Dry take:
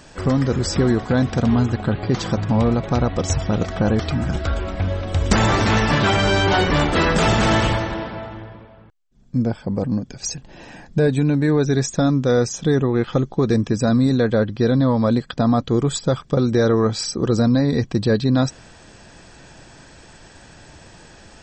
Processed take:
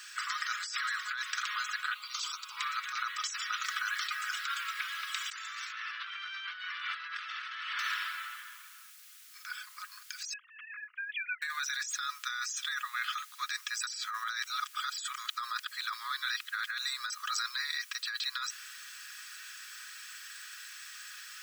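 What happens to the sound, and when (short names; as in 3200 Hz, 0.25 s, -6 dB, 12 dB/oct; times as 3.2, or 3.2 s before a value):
1.94–2.57 fixed phaser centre 350 Hz, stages 8
3.64 noise floor step -64 dB -56 dB
5.72–7.79 running mean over 6 samples
10.33–11.42 sine-wave speech
13.87–17.1 reverse
whole clip: steep high-pass 1200 Hz 72 dB/oct; comb 4.8 ms, depth 31%; negative-ratio compressor -34 dBFS, ratio -1; gain -2.5 dB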